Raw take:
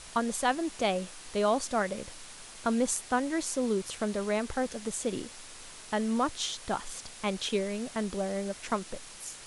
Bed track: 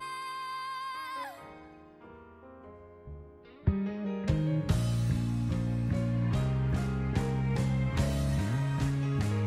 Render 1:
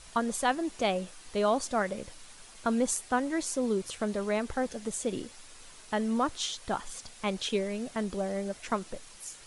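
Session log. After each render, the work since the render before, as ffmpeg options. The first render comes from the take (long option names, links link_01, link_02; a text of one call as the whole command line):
ffmpeg -i in.wav -af "afftdn=noise_reduction=6:noise_floor=-48" out.wav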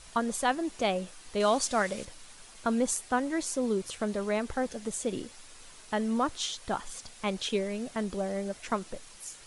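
ffmpeg -i in.wav -filter_complex "[0:a]asettb=1/sr,asplit=3[link_01][link_02][link_03];[link_01]atrim=end=1.404[link_04];[link_02]atrim=start=1.4:end=2.05,asetpts=PTS-STARTPTS,afade=type=in:duration=0.004:curve=qsin,afade=type=out:start_time=0.646:duration=0.004:curve=qsin,equalizer=frequency=5800:width=0.31:gain=7[link_05];[link_03]atrim=start=2.046[link_06];[link_04][link_05]acrossfade=duration=0.004:curve1=hsin:curve2=qsin[link_07];[link_07][link_06]acrossfade=duration=0.004:curve1=qsin:curve2=hsin" out.wav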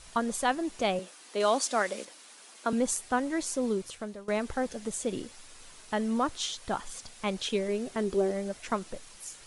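ffmpeg -i in.wav -filter_complex "[0:a]asettb=1/sr,asplit=3[link_01][link_02][link_03];[link_01]atrim=end=0.994[link_04];[link_02]atrim=start=0.99:end=2.73,asetpts=PTS-STARTPTS,afade=type=in:duration=0.004:curve=qsin,afade=type=out:start_time=1.736:duration=0.004:curve=qsin,highpass=frequency=240:width=0.5412,highpass=frequency=240:width=1.3066[link_05];[link_03]atrim=start=2.726[link_06];[link_04][link_05]acrossfade=duration=0.004:curve1=hsin:curve2=qsin[link_07];[link_07][link_06]acrossfade=duration=0.004:curve1=qsin:curve2=hsin,asettb=1/sr,asplit=3[link_08][link_09][link_10];[link_08]atrim=end=7.684[link_11];[link_09]atrim=start=7.68:end=8.31,asetpts=PTS-STARTPTS,afade=type=in:duration=0.004:curve=qsin,afade=type=out:start_time=0.626:duration=0.004:curve=qsin,equalizer=frequency=390:width_type=o:width=0.21:gain=13[link_12];[link_10]atrim=start=8.306[link_13];[link_11][link_12]acrossfade=duration=0.004:curve1=hsin:curve2=qsin[link_14];[link_14][link_13]acrossfade=duration=0.004:curve1=qsin:curve2=hsin,asplit=2[link_15][link_16];[link_15]atrim=end=4.28,asetpts=PTS-STARTPTS,afade=type=out:start_time=3.68:duration=0.6:silence=0.133352[link_17];[link_16]atrim=start=4.28,asetpts=PTS-STARTPTS,afade=type=in:duration=0.004:curve=hsin:silence=0.133352[link_18];[link_17][link_18]concat=n=2:v=0:a=1" out.wav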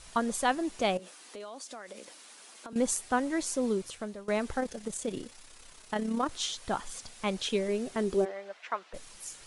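ffmpeg -i in.wav -filter_complex "[0:a]asettb=1/sr,asplit=3[link_01][link_02][link_03];[link_01]atrim=end=0.974[link_04];[link_02]atrim=start=0.97:end=2.76,asetpts=PTS-STARTPTS,afade=type=in:duration=0.004:curve=qsin,afade=type=out:start_time=1.786:duration=0.004:curve=qsin,acompressor=threshold=-41dB:ratio=6:attack=3.2:release=140:knee=1:detection=peak[link_05];[link_03]atrim=start=2.756[link_06];[link_04][link_05]acrossfade=duration=0.004:curve1=hsin:curve2=qsin[link_07];[link_07][link_06]acrossfade=duration=0.004:curve1=qsin:curve2=hsin,asettb=1/sr,asplit=3[link_08][link_09][link_10];[link_08]atrim=end=4.604[link_11];[link_09]atrim=start=4.6:end=6.31,asetpts=PTS-STARTPTS,afade=type=in:duration=0.004:curve=qsin,afade=type=out:start_time=1.706:duration=0.004:curve=qsin,tremolo=f=33:d=0.519[link_12];[link_10]atrim=start=6.306[link_13];[link_11][link_12]acrossfade=duration=0.004:curve1=hsin:curve2=qsin[link_14];[link_14][link_13]acrossfade=duration=0.004:curve1=qsin:curve2=hsin,asplit=3[link_15][link_16][link_17];[link_15]afade=type=out:start_time=8.24:duration=0.02[link_18];[link_16]highpass=740,lowpass=3000,afade=type=in:start_time=8.24:duration=0.02,afade=type=out:start_time=8.93:duration=0.02[link_19];[link_17]afade=type=in:start_time=8.93:duration=0.02[link_20];[link_18][link_19][link_20]amix=inputs=3:normalize=0" out.wav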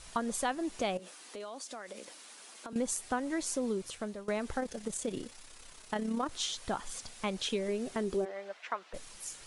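ffmpeg -i in.wav -af "acompressor=threshold=-31dB:ratio=2.5" out.wav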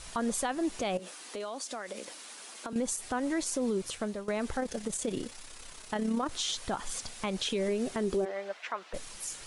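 ffmpeg -i in.wav -af "acontrast=27,alimiter=limit=-22.5dB:level=0:latency=1:release=64" out.wav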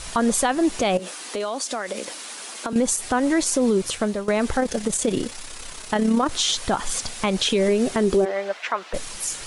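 ffmpeg -i in.wav -af "volume=11dB" out.wav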